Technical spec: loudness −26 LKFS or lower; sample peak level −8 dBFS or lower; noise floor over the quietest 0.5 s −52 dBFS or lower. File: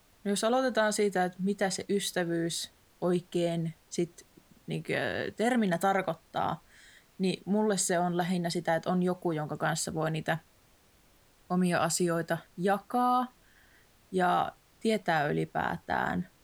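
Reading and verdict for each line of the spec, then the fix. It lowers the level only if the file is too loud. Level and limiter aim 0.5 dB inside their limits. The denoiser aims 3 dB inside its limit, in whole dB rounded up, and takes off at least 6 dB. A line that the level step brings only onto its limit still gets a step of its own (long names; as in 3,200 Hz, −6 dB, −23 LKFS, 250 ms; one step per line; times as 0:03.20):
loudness −30.5 LKFS: in spec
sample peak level −14.0 dBFS: in spec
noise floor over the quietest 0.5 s −63 dBFS: in spec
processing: no processing needed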